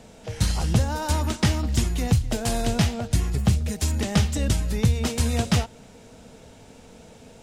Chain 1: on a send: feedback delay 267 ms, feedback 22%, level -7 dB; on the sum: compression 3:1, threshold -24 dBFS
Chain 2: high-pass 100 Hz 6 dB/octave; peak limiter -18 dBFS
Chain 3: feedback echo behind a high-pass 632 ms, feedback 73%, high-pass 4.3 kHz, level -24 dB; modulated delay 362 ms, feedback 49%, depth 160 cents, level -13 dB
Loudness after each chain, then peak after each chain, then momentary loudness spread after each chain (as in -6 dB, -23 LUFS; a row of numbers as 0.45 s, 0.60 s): -28.5 LUFS, -29.0 LUFS, -24.0 LUFS; -12.5 dBFS, -18.0 dBFS, -8.0 dBFS; 20 LU, 20 LU, 14 LU